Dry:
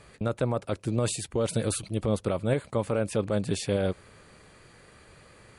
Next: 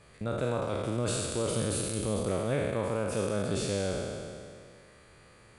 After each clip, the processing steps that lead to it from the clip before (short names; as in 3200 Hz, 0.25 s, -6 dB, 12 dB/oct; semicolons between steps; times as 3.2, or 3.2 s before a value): spectral trails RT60 2.23 s; gain -6.5 dB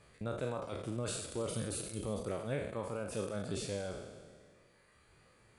reverb removal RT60 1.1 s; gain -5 dB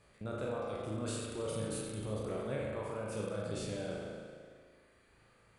spring tank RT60 1.8 s, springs 37 ms, chirp 30 ms, DRR -1 dB; gain -3.5 dB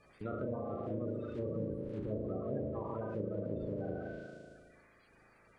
bin magnitudes rounded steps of 30 dB; treble ducked by the level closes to 640 Hz, closed at -34.5 dBFS; gain +1.5 dB